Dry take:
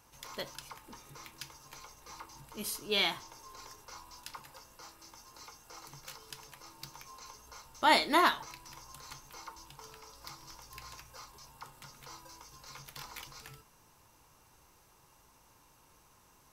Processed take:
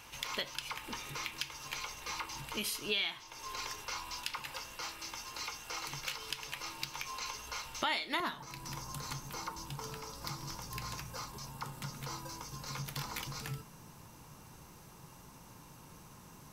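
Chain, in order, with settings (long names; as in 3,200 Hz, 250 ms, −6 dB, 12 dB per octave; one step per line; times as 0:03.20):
parametric band 2,700 Hz +11.5 dB 1.4 octaves, from 0:08.20 170 Hz
downward compressor 4 to 1, threshold −42 dBFS, peak gain reduction 22.5 dB
level +6.5 dB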